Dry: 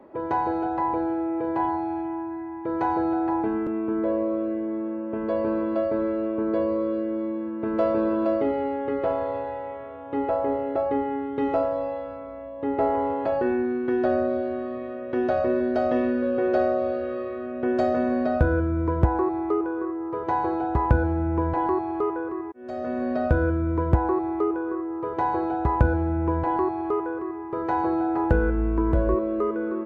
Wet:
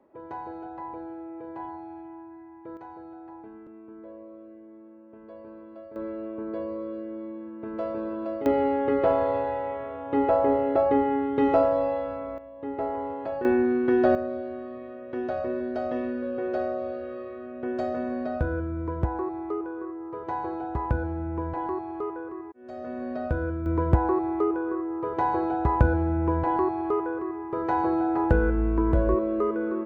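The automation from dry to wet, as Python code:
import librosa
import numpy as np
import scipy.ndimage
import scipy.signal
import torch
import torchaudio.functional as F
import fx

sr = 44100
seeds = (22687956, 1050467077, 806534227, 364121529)

y = fx.gain(x, sr, db=fx.steps((0.0, -12.5), (2.77, -19.5), (5.96, -8.5), (8.46, 3.0), (12.38, -7.0), (13.45, 2.5), (14.15, -6.5), (23.66, -0.5)))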